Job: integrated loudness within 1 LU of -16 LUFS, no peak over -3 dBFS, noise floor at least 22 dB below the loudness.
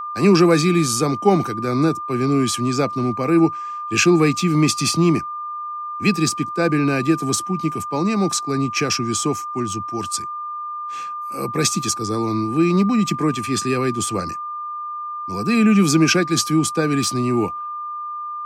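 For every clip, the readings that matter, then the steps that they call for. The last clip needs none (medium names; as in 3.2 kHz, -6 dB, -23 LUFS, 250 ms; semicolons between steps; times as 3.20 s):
steady tone 1.2 kHz; tone level -26 dBFS; loudness -19.5 LUFS; peak level -2.5 dBFS; loudness target -16.0 LUFS
-> band-stop 1.2 kHz, Q 30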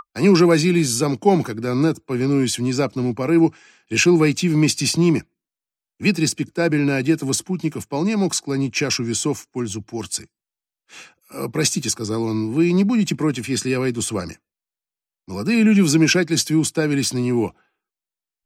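steady tone not found; loudness -19.5 LUFS; peak level -2.5 dBFS; loudness target -16.0 LUFS
-> trim +3.5 dB; peak limiter -3 dBFS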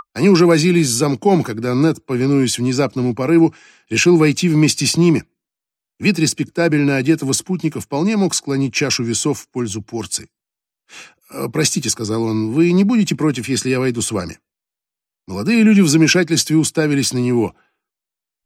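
loudness -16.5 LUFS; peak level -3.0 dBFS; noise floor -86 dBFS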